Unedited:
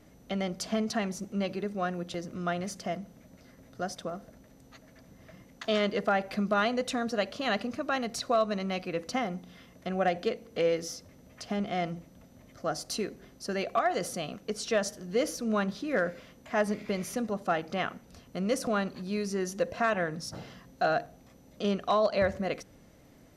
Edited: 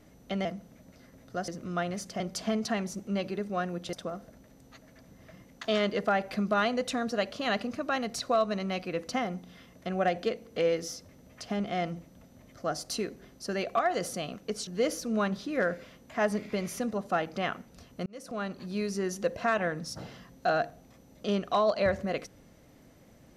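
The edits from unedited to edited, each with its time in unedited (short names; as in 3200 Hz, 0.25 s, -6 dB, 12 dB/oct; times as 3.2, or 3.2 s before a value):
0.45–2.18 swap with 2.9–3.93
14.67–15.03 cut
18.42–19.08 fade in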